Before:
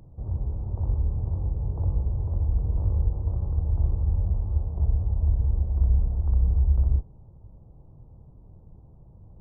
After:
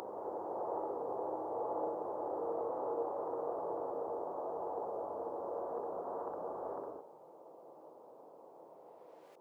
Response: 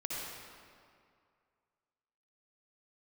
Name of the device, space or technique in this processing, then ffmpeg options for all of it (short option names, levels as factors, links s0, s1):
ghost voice: -filter_complex "[0:a]areverse[s0];[1:a]atrim=start_sample=2205[s1];[s0][s1]afir=irnorm=-1:irlink=0,areverse,highpass=f=440:w=0.5412,highpass=f=440:w=1.3066,volume=2.82"